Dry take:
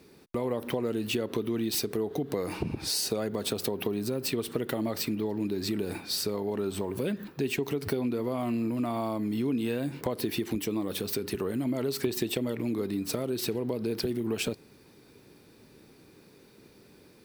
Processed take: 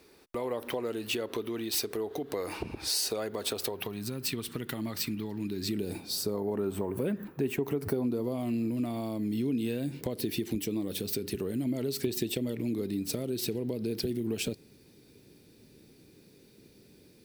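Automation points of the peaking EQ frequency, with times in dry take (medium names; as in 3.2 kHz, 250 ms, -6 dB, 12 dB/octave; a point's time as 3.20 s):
peaking EQ -11.5 dB 1.6 oct
3.61 s 160 Hz
4.13 s 540 Hz
5.41 s 540 Hz
6.64 s 4.4 kHz
7.74 s 4.4 kHz
8.49 s 1.1 kHz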